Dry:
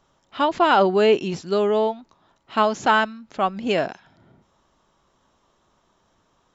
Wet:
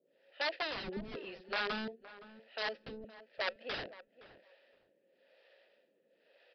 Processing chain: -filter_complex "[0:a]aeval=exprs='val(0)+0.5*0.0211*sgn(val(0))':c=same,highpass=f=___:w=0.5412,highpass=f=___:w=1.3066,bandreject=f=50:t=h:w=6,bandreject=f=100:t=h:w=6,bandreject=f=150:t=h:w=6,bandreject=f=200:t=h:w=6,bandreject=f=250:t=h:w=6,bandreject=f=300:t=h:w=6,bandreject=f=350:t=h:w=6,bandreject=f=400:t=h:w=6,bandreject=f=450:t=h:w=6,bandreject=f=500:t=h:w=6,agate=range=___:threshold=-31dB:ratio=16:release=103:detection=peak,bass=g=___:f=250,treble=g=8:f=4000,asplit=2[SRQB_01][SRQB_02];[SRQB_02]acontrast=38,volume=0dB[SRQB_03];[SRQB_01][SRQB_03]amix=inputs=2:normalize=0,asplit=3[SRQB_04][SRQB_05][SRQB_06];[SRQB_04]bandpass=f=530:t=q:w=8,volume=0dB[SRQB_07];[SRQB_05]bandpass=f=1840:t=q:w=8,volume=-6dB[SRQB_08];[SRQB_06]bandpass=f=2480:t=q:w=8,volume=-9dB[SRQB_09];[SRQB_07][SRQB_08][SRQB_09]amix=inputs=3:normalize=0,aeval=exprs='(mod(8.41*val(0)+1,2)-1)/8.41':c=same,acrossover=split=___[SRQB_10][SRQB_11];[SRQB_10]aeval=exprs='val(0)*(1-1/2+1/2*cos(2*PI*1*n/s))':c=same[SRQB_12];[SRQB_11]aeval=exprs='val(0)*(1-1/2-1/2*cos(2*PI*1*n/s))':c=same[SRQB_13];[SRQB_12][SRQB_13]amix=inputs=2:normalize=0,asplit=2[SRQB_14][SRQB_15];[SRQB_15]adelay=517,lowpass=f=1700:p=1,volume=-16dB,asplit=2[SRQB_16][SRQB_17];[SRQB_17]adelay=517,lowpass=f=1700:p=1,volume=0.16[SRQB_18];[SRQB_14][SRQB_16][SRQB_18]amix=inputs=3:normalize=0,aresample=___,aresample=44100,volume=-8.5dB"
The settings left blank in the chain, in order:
170, 170, -12dB, 0, 410, 11025